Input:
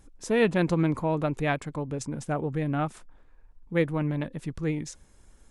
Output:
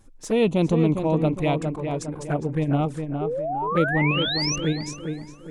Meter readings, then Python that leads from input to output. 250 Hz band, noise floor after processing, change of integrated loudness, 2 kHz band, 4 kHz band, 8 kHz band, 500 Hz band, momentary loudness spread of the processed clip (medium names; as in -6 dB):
+5.0 dB, -44 dBFS, +4.5 dB, +5.0 dB, +15.0 dB, +8.5 dB, +4.5 dB, 9 LU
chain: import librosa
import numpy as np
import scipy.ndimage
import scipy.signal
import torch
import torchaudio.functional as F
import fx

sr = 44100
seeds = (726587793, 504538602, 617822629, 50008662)

p1 = fx.level_steps(x, sr, step_db=14)
p2 = x + (p1 * 10.0 ** (1.0 / 20.0))
p3 = fx.env_flanger(p2, sr, rest_ms=9.5, full_db=-18.0)
p4 = fx.spec_paint(p3, sr, seeds[0], shape='rise', start_s=3.21, length_s=1.35, low_hz=390.0, high_hz=6300.0, level_db=-27.0)
y = fx.echo_tape(p4, sr, ms=408, feedback_pct=46, wet_db=-4.0, lp_hz=1700.0, drive_db=12.0, wow_cents=5)